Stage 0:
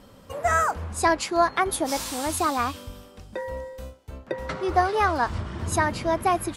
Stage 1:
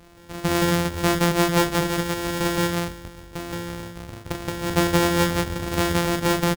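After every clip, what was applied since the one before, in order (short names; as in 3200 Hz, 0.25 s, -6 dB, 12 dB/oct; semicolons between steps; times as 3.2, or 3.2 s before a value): sample sorter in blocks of 256 samples; loudspeakers at several distances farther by 13 m -6 dB, 59 m 0 dB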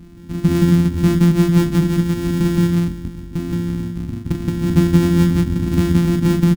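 resonant low shelf 370 Hz +13 dB, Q 3; in parallel at -1.5 dB: compressor, threshold -15 dBFS, peak gain reduction 13 dB; on the sum: gain -7.5 dB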